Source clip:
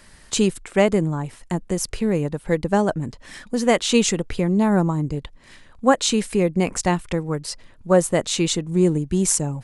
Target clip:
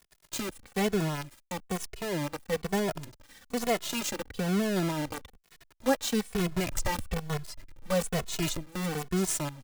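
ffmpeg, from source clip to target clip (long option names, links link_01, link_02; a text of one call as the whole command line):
ffmpeg -i in.wav -filter_complex "[0:a]asplit=3[link_01][link_02][link_03];[link_01]afade=type=out:start_time=6.34:duration=0.02[link_04];[link_02]asubboost=boost=8:cutoff=93,afade=type=in:start_time=6.34:duration=0.02,afade=type=out:start_time=8.65:duration=0.02[link_05];[link_03]afade=type=in:start_time=8.65:duration=0.02[link_06];[link_04][link_05][link_06]amix=inputs=3:normalize=0,acrusher=bits=4:dc=4:mix=0:aa=0.000001,asplit=2[link_07][link_08];[link_08]adelay=2.3,afreqshift=-1.1[link_09];[link_07][link_09]amix=inputs=2:normalize=1,volume=-8dB" out.wav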